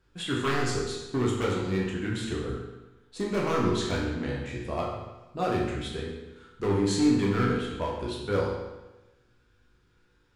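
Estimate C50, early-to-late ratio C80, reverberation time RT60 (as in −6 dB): 2.0 dB, 4.0 dB, 1.1 s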